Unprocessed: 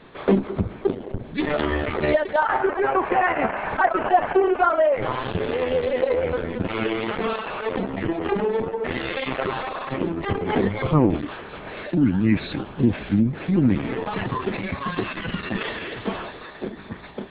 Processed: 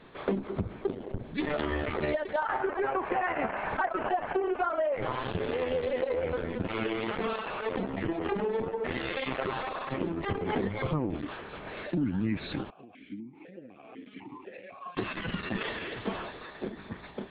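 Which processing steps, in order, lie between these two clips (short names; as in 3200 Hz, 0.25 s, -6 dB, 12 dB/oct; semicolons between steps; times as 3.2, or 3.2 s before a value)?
compressor 6:1, threshold -20 dBFS, peak gain reduction 8.5 dB; 12.7–14.97 vowel sequencer 4 Hz; gain -5.5 dB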